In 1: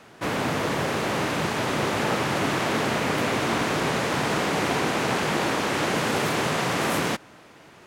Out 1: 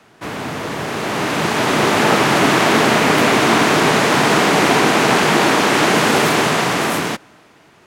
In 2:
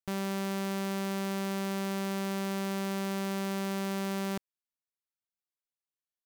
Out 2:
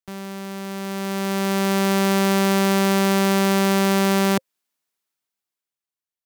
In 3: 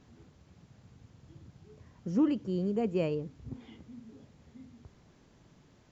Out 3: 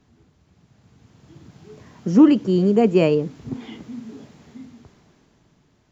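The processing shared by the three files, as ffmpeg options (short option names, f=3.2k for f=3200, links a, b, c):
-filter_complex "[0:a]bandreject=f=530:w=12,acrossover=split=140[a][b];[b]dynaudnorm=f=160:g=17:m=16dB[c];[a][c]amix=inputs=2:normalize=0"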